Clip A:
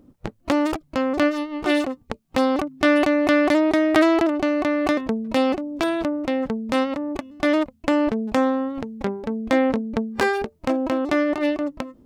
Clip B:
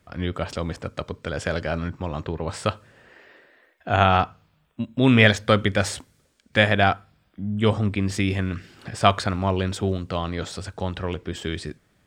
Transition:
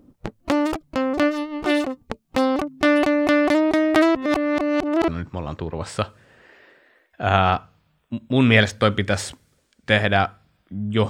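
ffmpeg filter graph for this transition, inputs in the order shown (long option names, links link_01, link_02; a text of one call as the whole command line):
ffmpeg -i cue0.wav -i cue1.wav -filter_complex "[0:a]apad=whole_dur=11.09,atrim=end=11.09,asplit=2[link_01][link_02];[link_01]atrim=end=4.152[link_03];[link_02]atrim=start=4.148:end=5.082,asetpts=PTS-STARTPTS,areverse[link_04];[1:a]atrim=start=1.748:end=7.76[link_05];[link_03][link_04]acrossfade=duration=0.004:curve1=hsin:curve2=hsin[link_06];[link_06][link_05]acrossfade=duration=0.004:curve1=hsin:curve2=hsin" out.wav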